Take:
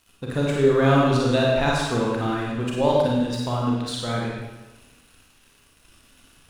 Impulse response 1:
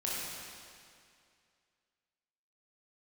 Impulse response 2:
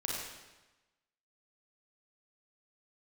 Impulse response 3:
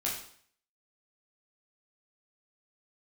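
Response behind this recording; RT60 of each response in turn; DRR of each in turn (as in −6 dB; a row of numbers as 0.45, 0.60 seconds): 2; 2.3, 1.1, 0.55 seconds; −7.0, −4.0, −5.5 decibels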